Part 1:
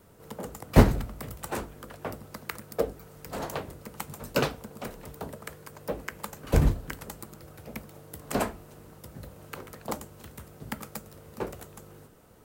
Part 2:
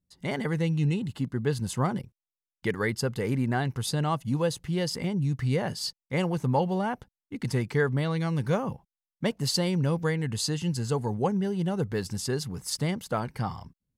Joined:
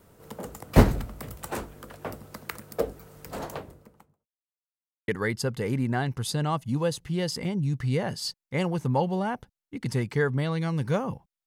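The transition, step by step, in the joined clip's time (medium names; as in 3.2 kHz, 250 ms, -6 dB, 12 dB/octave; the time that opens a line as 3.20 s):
part 1
3.25–4.27 s: studio fade out
4.27–5.08 s: mute
5.08 s: go over to part 2 from 2.67 s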